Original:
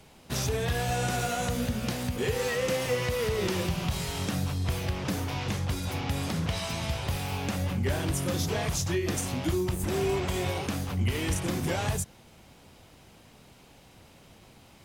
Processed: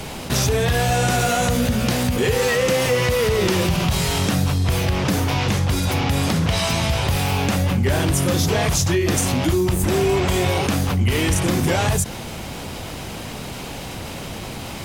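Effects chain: fast leveller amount 50%; gain +8 dB

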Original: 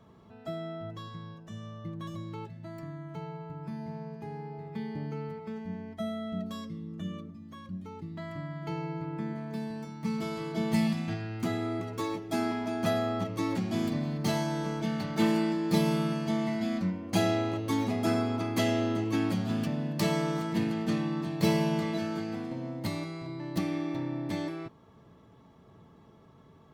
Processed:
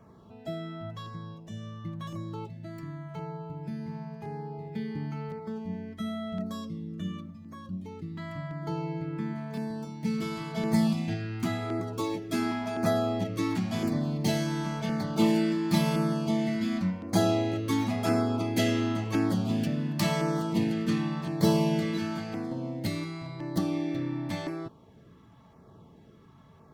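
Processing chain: LFO notch saw down 0.94 Hz 270–3800 Hz; gain +2.5 dB

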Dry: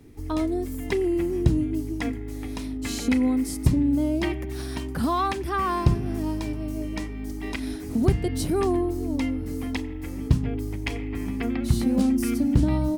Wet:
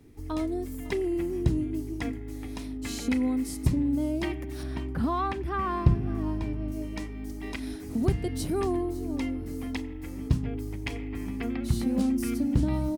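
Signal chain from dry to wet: 4.63–6.72 tone controls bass +4 dB, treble -12 dB; echo 0.554 s -20 dB; gain -4.5 dB

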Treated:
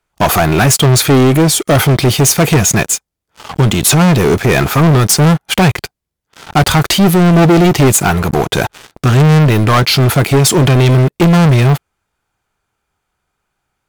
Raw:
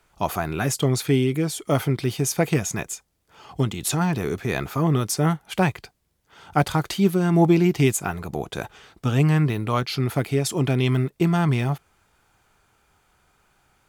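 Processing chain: sample leveller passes 5; gain +1.5 dB

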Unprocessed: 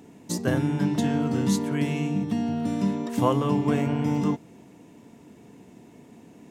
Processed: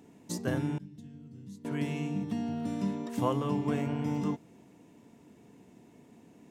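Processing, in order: 0.78–1.65 passive tone stack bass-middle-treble 10-0-1; gain -7 dB

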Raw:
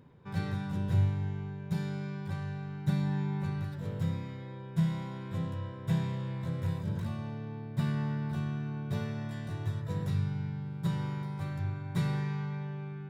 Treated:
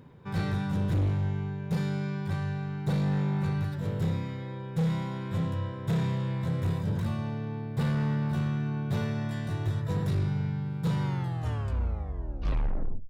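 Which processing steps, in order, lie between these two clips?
tape stop at the end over 2.08 s; overloaded stage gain 29 dB; gain +5.5 dB

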